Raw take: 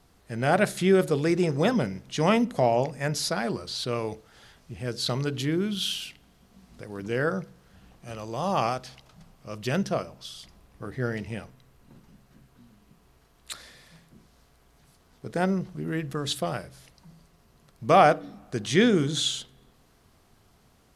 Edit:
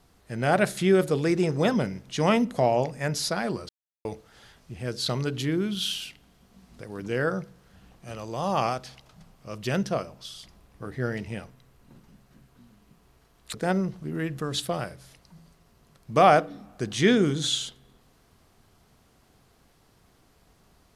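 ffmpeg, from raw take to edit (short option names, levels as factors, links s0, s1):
-filter_complex "[0:a]asplit=4[s0][s1][s2][s3];[s0]atrim=end=3.69,asetpts=PTS-STARTPTS,afade=t=out:st=3.686:d=0.004:c=hsin[s4];[s1]atrim=start=3.69:end=4.05,asetpts=PTS-STARTPTS,volume=0[s5];[s2]atrim=start=4.05:end=13.542,asetpts=PTS-STARTPTS,afade=t=in:d=0.004:c=hsin[s6];[s3]atrim=start=15.268[s7];[s4][s5][s6]concat=n=3:v=0:a=1[s8];[s8][s7]acrossfade=d=0.004:c1=hsin:c2=hsin"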